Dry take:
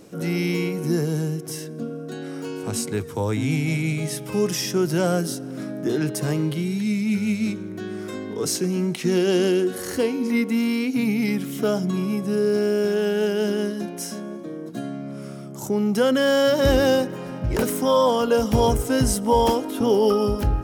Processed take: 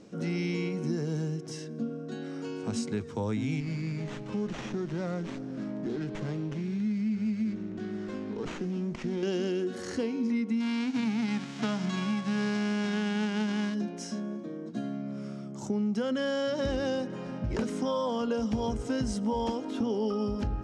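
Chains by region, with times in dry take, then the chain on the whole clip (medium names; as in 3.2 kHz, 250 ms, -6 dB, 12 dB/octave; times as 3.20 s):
3.60–9.23 s: compression 2:1, threshold -27 dBFS + sliding maximum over 9 samples
10.60–13.73 s: formants flattened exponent 0.3 + low-pass 2.4 kHz 6 dB/octave
whole clip: low-pass 6.9 kHz 24 dB/octave; peaking EQ 220 Hz +8.5 dB 0.31 oct; compression, threshold -20 dBFS; trim -6.5 dB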